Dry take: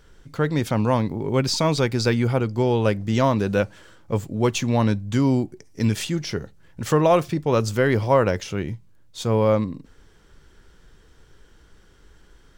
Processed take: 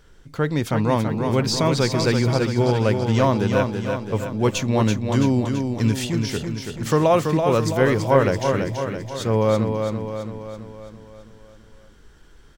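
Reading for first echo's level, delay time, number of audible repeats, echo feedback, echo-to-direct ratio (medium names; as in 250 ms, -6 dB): -5.5 dB, 332 ms, 6, 55%, -4.0 dB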